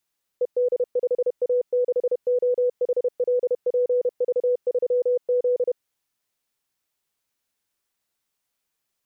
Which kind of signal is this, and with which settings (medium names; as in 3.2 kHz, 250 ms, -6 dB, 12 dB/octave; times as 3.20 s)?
Morse "ED5A6OHLPV3Z" 31 wpm 494 Hz -17.5 dBFS